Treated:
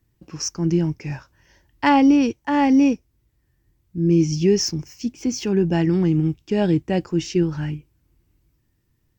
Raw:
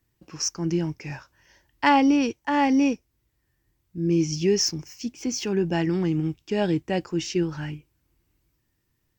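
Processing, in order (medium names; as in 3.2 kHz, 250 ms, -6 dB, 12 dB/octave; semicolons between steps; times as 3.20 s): bass shelf 370 Hz +8 dB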